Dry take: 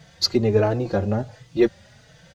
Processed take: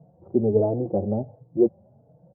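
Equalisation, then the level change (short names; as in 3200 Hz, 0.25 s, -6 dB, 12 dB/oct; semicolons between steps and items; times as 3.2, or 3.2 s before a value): HPF 130 Hz 12 dB/oct; steep low-pass 780 Hz 36 dB/oct; air absorption 450 m; 0.0 dB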